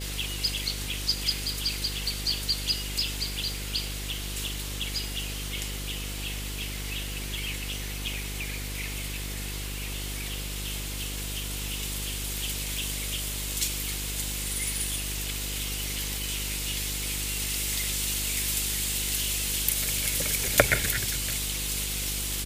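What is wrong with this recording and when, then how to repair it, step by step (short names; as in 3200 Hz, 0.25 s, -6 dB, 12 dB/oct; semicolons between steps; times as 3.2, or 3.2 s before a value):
buzz 50 Hz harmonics 10 -36 dBFS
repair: de-hum 50 Hz, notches 10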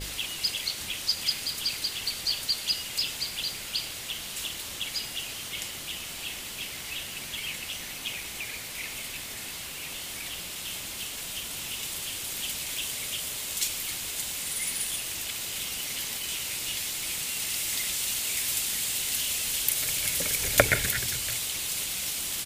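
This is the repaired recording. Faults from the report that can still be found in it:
none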